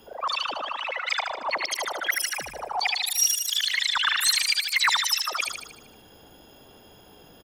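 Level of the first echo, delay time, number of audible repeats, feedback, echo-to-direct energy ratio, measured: -5.5 dB, 77 ms, 6, 54%, -4.0 dB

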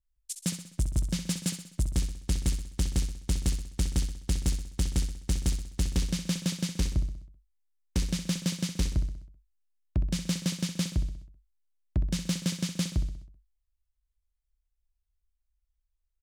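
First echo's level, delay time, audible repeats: -9.5 dB, 64 ms, 5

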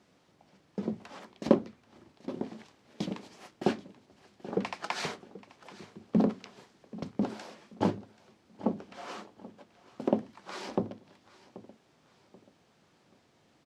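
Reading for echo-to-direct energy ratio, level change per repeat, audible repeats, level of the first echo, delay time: -18.0 dB, -9.0 dB, 2, -18.5 dB, 0.783 s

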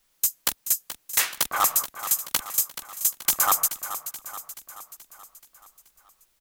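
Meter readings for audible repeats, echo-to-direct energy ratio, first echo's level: 5, -10.5 dB, -12.0 dB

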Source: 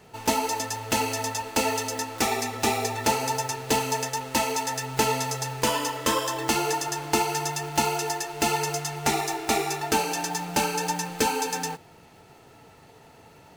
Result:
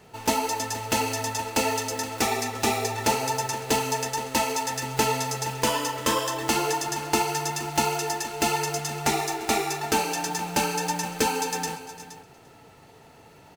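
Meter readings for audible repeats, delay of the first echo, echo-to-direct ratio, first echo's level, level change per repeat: 3, 0.345 s, -13.0 dB, -19.0 dB, no steady repeat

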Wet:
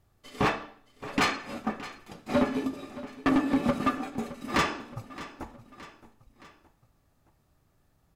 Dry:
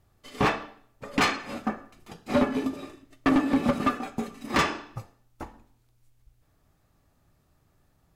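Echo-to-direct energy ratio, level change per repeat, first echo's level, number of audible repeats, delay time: -14.5 dB, -5.5 dB, -16.0 dB, 3, 0.619 s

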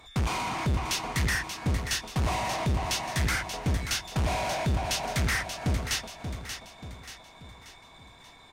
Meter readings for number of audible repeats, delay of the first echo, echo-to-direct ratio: 4, 0.583 s, -7.5 dB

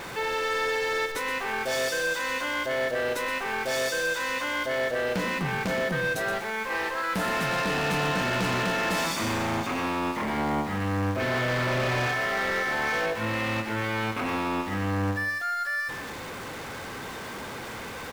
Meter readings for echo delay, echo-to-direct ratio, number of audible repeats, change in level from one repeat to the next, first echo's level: 0.122 s, -8.5 dB, 2, -9.0 dB, -9.0 dB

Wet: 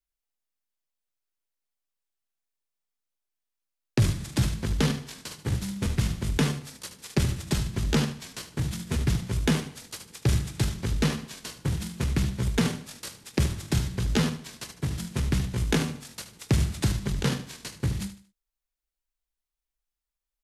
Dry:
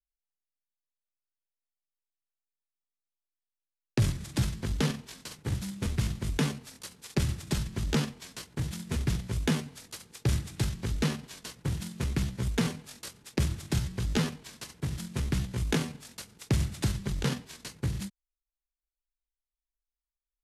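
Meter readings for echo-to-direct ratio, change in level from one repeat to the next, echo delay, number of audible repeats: -11.5 dB, -10.0 dB, 76 ms, 3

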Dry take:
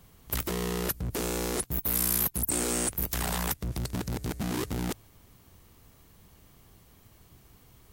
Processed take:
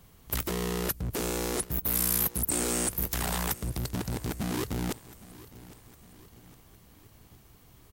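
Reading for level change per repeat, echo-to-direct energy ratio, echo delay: -6.0 dB, -17.5 dB, 0.809 s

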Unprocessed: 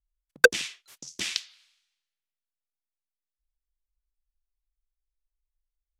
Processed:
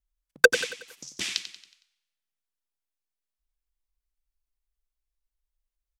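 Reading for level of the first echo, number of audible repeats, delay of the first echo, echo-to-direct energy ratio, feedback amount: -12.0 dB, 4, 92 ms, -11.0 dB, 46%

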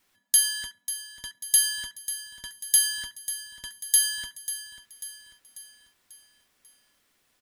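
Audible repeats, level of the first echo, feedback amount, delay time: 4, -12.5 dB, 49%, 0.542 s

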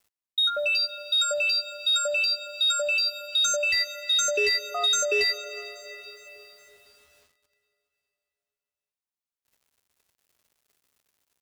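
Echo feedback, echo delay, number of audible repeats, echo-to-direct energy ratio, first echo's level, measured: 59%, 0.413 s, 3, -20.5 dB, -22.5 dB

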